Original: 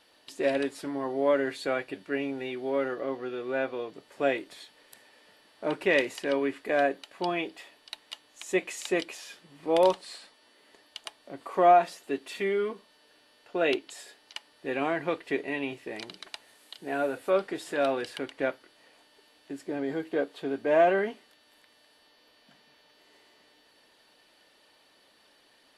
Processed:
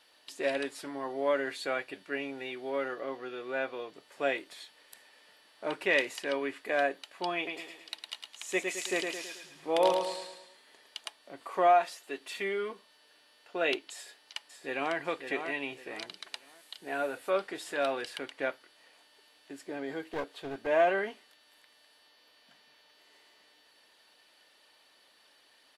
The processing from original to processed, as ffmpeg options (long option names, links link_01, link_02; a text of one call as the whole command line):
ffmpeg -i in.wav -filter_complex "[0:a]asettb=1/sr,asplit=3[link_01][link_02][link_03];[link_01]atrim=end=7.364[link_04];[link_02]atrim=start=7.36:end=11.05,asetpts=PTS-STARTPTS,afade=type=in:duration=0.004:curve=qsin,afade=type=out:start_time=3.686:duration=0.004:curve=qsin,aecho=1:1:108|216|324|432|540|648:0.562|0.264|0.124|0.0584|0.0274|0.0129,atrim=end_sample=162729[link_05];[link_03]atrim=start=11.046[link_06];[link_04][link_05]acrossfade=duration=0.004:curve1=hsin:curve2=qsin[link_07];[link_07][link_06]acrossfade=duration=0.004:curve1=qsin:curve2=hsin,asettb=1/sr,asplit=3[link_08][link_09][link_10];[link_08]atrim=end=11.674[link_11];[link_09]atrim=start=11.67:end=12.2,asetpts=PTS-STARTPTS,afade=type=in:duration=0.004:curve=qsin,afade=type=out:start_time=0.526:duration=0.004:curve=qsin,equalizer=frequency=130:width_type=o:width=2.4:gain=-7[link_12];[link_10]atrim=start=12.196[link_13];[link_11][link_12]acrossfade=duration=0.004:curve1=hsin:curve2=qsin[link_14];[link_14][link_13]acrossfade=duration=0.004:curve1=qsin:curve2=hsin,asplit=2[link_15][link_16];[link_16]afade=type=in:start_time=13.94:duration=0.01,afade=type=out:start_time=14.96:duration=0.01,aecho=0:1:550|1100|1650|2200:0.446684|0.134005|0.0402015|0.0120605[link_17];[link_15][link_17]amix=inputs=2:normalize=0,asettb=1/sr,asplit=3[link_18][link_19][link_20];[link_18]atrim=end=20.134[link_21];[link_19]atrim=start=20.13:end=20.67,asetpts=PTS-STARTPTS,afade=type=in:duration=0.004:curve=qsin,afade=type=out:start_time=0.536:duration=0.004:curve=qsin,aeval=exprs='clip(val(0),-1,0.0178)':channel_layout=same[link_22];[link_20]atrim=start=20.666[link_23];[link_21][link_22]acrossfade=duration=0.004:curve1=hsin:curve2=qsin[link_24];[link_24][link_23]acrossfade=duration=0.004:curve1=qsin:curve2=hsin,lowshelf=frequency=490:gain=-10" out.wav